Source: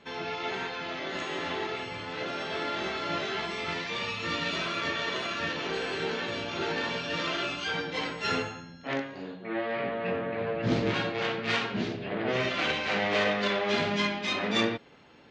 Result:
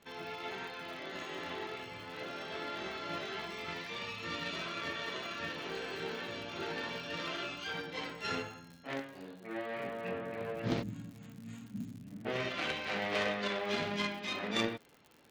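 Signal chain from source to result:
gain on a spectral selection 0:10.83–0:12.25, 320–6,400 Hz −23 dB
harmonic generator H 3 −16 dB, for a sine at −13.5 dBFS
surface crackle 100 per second −42 dBFS
level −3 dB

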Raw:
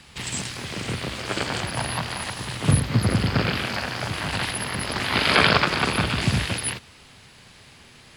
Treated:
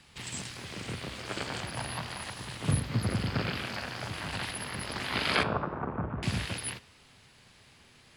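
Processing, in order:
0:05.43–0:06.23: low-pass filter 1,200 Hz 24 dB per octave
flanger 0.28 Hz, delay 6.8 ms, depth 9.5 ms, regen −87%
level −4.5 dB

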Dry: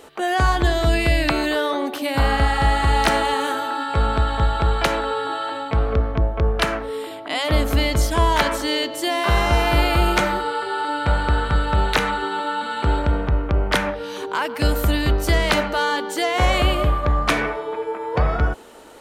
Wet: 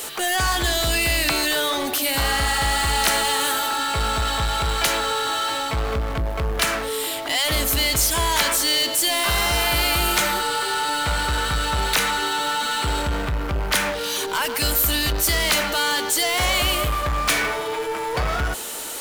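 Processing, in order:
first-order pre-emphasis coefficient 0.9
power curve on the samples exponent 0.5
level +2.5 dB

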